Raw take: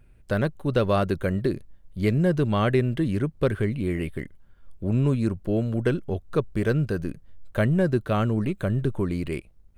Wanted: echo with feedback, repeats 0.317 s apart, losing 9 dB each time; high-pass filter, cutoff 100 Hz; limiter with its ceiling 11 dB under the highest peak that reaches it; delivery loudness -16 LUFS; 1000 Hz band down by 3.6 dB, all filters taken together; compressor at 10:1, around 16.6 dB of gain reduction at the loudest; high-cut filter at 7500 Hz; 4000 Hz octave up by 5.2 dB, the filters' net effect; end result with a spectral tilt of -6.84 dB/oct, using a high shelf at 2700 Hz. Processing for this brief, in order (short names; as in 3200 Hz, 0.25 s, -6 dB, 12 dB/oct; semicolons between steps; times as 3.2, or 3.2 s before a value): HPF 100 Hz; LPF 7500 Hz; bell 1000 Hz -6 dB; high shelf 2700 Hz +3.5 dB; bell 4000 Hz +4.5 dB; compressor 10:1, threshold -35 dBFS; limiter -33.5 dBFS; feedback echo 0.317 s, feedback 35%, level -9 dB; gain +27 dB